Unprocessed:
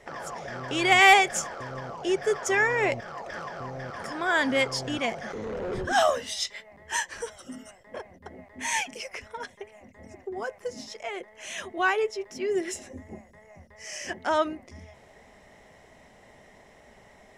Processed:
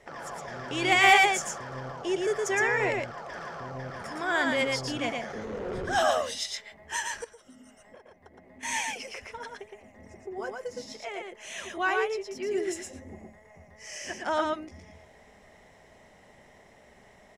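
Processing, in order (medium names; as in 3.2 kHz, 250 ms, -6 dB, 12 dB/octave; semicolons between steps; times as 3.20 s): delay 115 ms -3 dB; 7.24–8.63 s: compression 6:1, threshold -46 dBFS, peak gain reduction 13.5 dB; trim -3.5 dB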